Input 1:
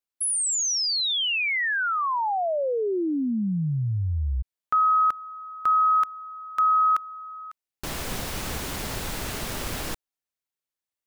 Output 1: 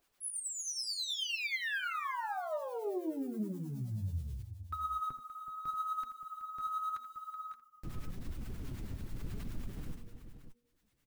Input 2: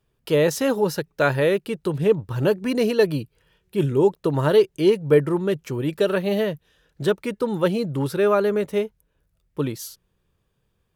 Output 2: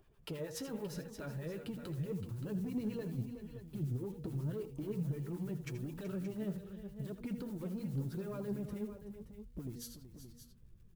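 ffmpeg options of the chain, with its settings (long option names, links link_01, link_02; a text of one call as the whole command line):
ffmpeg -i in.wav -filter_complex "[0:a]lowpass=frequency=1600:poles=1,bandreject=frequency=238.4:width_type=h:width=4,bandreject=frequency=476.8:width_type=h:width=4,asubboost=boost=7.5:cutoff=240,acompressor=threshold=-19dB:ratio=6:attack=0.14:release=136:detection=rms,alimiter=level_in=4.5dB:limit=-24dB:level=0:latency=1:release=76,volume=-4.5dB,acompressor=mode=upward:threshold=-48dB:ratio=2.5:attack=0.85:release=462:knee=2.83:detection=peak,acrusher=bits=8:mode=log:mix=0:aa=0.000001,crystalizer=i=1:c=0,acrossover=split=780[link_01][link_02];[link_01]aeval=exprs='val(0)*(1-0.7/2+0.7/2*cos(2*PI*9.4*n/s))':channel_layout=same[link_03];[link_02]aeval=exprs='val(0)*(1-0.7/2-0.7/2*cos(2*PI*9.4*n/s))':channel_layout=same[link_04];[link_03][link_04]amix=inputs=2:normalize=0,asoftclip=type=tanh:threshold=-28.5dB,flanger=delay=2.7:depth=8.2:regen=43:speed=0.84:shape=triangular,aecho=1:1:71|82|376|574:0.1|0.237|0.237|0.266,volume=1.5dB" out.wav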